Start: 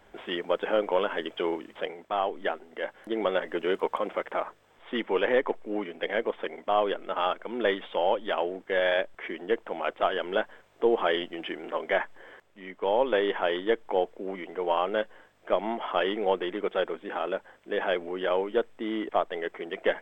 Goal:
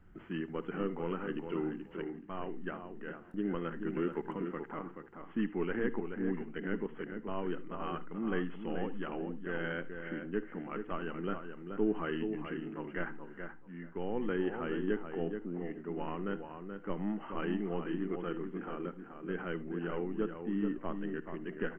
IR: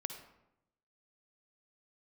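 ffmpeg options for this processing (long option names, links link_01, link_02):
-filter_complex "[0:a]firequalizer=gain_entry='entry(160,0);entry(630,-25);entry(1400,-13);entry(3800,-18)':delay=0.05:min_phase=1,asplit=2[link_01][link_02];[link_02]adelay=394,lowpass=frequency=2700:poles=1,volume=-6.5dB,asplit=2[link_03][link_04];[link_04]adelay=394,lowpass=frequency=2700:poles=1,volume=0.18,asplit=2[link_05][link_06];[link_06]adelay=394,lowpass=frequency=2700:poles=1,volume=0.18[link_07];[link_01][link_03][link_05][link_07]amix=inputs=4:normalize=0,asplit=2[link_08][link_09];[1:a]atrim=start_sample=2205,atrim=end_sample=3528,lowpass=2500[link_10];[link_09][link_10]afir=irnorm=-1:irlink=0,volume=0dB[link_11];[link_08][link_11]amix=inputs=2:normalize=0,asetrate=40517,aresample=44100"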